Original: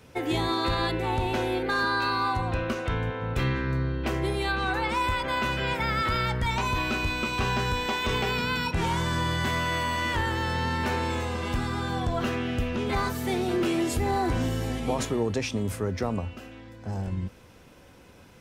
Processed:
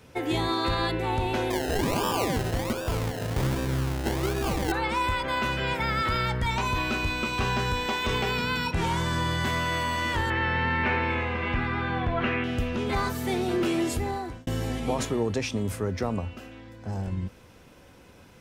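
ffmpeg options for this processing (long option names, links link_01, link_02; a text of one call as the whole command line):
ffmpeg -i in.wav -filter_complex "[0:a]asettb=1/sr,asplit=3[link_01][link_02][link_03];[link_01]atrim=end=1.504[link_04];[link_02]atrim=start=1.5:end=4.72,asetpts=PTS-STARTPTS,afade=type=in:duration=0.004:curve=qsin,afade=type=out:start_time=3.216:duration=0.004:curve=qsin,acrusher=samples=30:mix=1:aa=0.000001:lfo=1:lforange=18:lforate=1.3[link_05];[link_03]atrim=start=4.716[link_06];[link_04][link_05]acrossfade=duration=0.004:curve1=hsin:curve2=qsin[link_07];[link_07][link_06]acrossfade=duration=0.004:curve1=qsin:curve2=hsin,asettb=1/sr,asplit=3[link_08][link_09][link_10];[link_08]atrim=end=10.304[link_11];[link_09]atrim=start=10.3:end=12.44,asetpts=PTS-STARTPTS,afade=type=in:duration=0.004:curve=qsin,afade=type=out:start_time=2.136:duration=0.004:curve=qsin,lowpass=frequency=2300:width_type=q:width=2.8[link_12];[link_10]atrim=start=12.436[link_13];[link_11][link_12]acrossfade=duration=0.004:curve1=hsin:curve2=qsin[link_14];[link_14][link_13]acrossfade=duration=0.004:curve1=qsin:curve2=hsin,asplit=2[link_15][link_16];[link_15]atrim=end=14.47,asetpts=PTS-STARTPTS,afade=type=out:start_time=13.87:duration=0.6[link_17];[link_16]atrim=start=14.47,asetpts=PTS-STARTPTS,afade=type=in:duration=0.004:curve=hsin[link_18];[link_17][link_18]concat=n=2:v=0:a=1" out.wav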